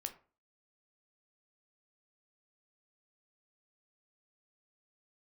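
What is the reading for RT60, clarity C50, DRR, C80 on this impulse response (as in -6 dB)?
0.40 s, 13.5 dB, 6.5 dB, 18.5 dB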